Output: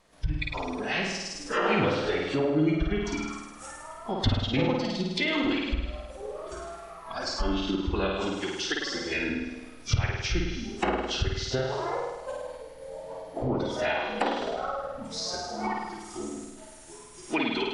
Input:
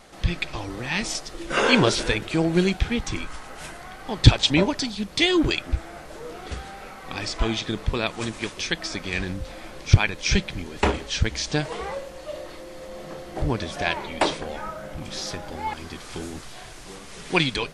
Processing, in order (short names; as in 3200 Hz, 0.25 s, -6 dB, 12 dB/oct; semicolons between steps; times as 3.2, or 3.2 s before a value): formant-preserving pitch shift -2.5 st; spectral noise reduction 14 dB; compressor 2.5:1, threshold -27 dBFS, peak gain reduction 14 dB; flutter echo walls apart 8.9 m, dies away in 1.1 s; treble ducked by the level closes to 2600 Hz, closed at -22.5 dBFS